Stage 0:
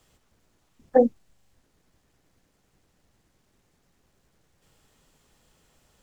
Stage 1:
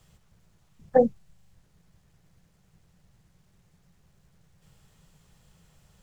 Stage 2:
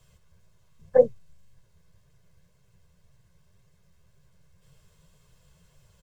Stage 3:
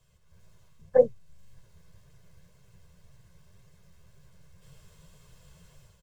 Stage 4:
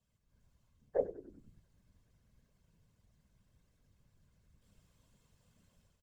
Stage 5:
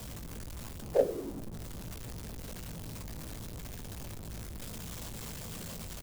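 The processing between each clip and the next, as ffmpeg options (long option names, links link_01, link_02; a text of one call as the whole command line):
ffmpeg -i in.wav -af "lowshelf=frequency=210:width_type=q:width=3:gain=6" out.wav
ffmpeg -i in.wav -af "aecho=1:1:1.9:0.66,flanger=delay=6.4:depth=8:regen=47:speed=1.9:shape=triangular,volume=1.5dB" out.wav
ffmpeg -i in.wav -af "dynaudnorm=framelen=130:gausssize=5:maxgain=11.5dB,volume=-6.5dB" out.wav
ffmpeg -i in.wav -filter_complex "[0:a]afftfilt=real='hypot(re,im)*cos(2*PI*random(0))':imag='hypot(re,im)*sin(2*PI*random(1))':win_size=512:overlap=0.75,asplit=7[link_01][link_02][link_03][link_04][link_05][link_06][link_07];[link_02]adelay=96,afreqshift=-66,volume=-14.5dB[link_08];[link_03]adelay=192,afreqshift=-132,volume=-19.4dB[link_09];[link_04]adelay=288,afreqshift=-198,volume=-24.3dB[link_10];[link_05]adelay=384,afreqshift=-264,volume=-29.1dB[link_11];[link_06]adelay=480,afreqshift=-330,volume=-34dB[link_12];[link_07]adelay=576,afreqshift=-396,volume=-38.9dB[link_13];[link_01][link_08][link_09][link_10][link_11][link_12][link_13]amix=inputs=7:normalize=0,volume=-8.5dB" out.wav
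ffmpeg -i in.wav -filter_complex "[0:a]aeval=exprs='val(0)+0.5*0.00708*sgn(val(0))':channel_layout=same,acrossover=split=190|1200[link_01][link_02][link_03];[link_03]acrusher=bits=7:mix=0:aa=0.000001[link_04];[link_01][link_02][link_04]amix=inputs=3:normalize=0,asplit=2[link_05][link_06];[link_06]adelay=18,volume=-10.5dB[link_07];[link_05][link_07]amix=inputs=2:normalize=0,volume=6dB" out.wav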